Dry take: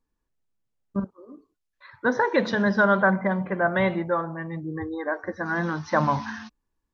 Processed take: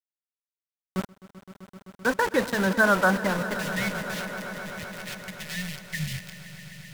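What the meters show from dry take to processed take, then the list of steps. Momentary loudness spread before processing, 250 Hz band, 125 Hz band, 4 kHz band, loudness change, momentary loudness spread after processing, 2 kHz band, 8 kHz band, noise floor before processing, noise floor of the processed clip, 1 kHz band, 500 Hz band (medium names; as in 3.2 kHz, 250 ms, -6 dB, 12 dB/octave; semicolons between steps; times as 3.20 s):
12 LU, -3.5 dB, -3.5 dB, +5.5 dB, -2.5 dB, 19 LU, 0.0 dB, no reading, -80 dBFS, under -85 dBFS, -4.0 dB, -4.0 dB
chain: small samples zeroed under -25 dBFS; peaking EQ 1.4 kHz +3.5 dB 0.24 oct; vibrato 2.9 Hz 100 cents; spectral selection erased 3.53–6.34 s, 210–1700 Hz; on a send: echo with a slow build-up 129 ms, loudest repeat 5, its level -17.5 dB; on the sum: trim -2 dB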